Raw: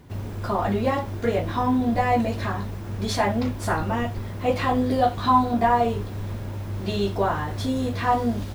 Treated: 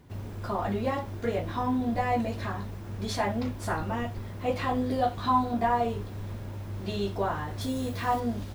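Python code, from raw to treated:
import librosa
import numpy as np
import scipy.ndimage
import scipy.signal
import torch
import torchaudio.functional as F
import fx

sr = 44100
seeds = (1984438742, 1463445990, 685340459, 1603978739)

y = fx.high_shelf(x, sr, hz=7600.0, db=10.5, at=(7.61, 8.2))
y = y * librosa.db_to_amplitude(-6.0)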